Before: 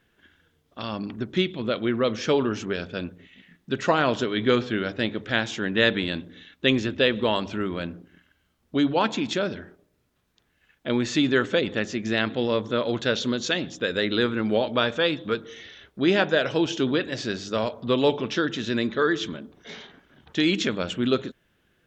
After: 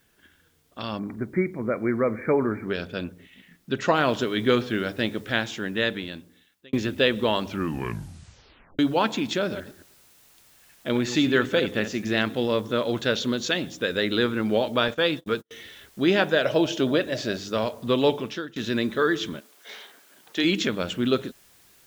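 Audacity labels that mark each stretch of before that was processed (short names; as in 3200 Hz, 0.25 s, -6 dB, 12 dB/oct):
0.990000	2.680000	brick-wall FIR low-pass 2400 Hz
3.950000	3.950000	noise floor step -69 dB -57 dB
5.220000	6.730000	fade out
7.480000	7.480000	tape stop 1.31 s
9.380000	12.230000	reverse delay 0.111 s, level -10.5 dB
14.880000	15.510000	gate -37 dBFS, range -45 dB
16.450000	17.370000	bell 610 Hz +14 dB 0.27 oct
18.110000	18.560000	fade out, to -23 dB
19.390000	20.430000	HPF 820 Hz -> 280 Hz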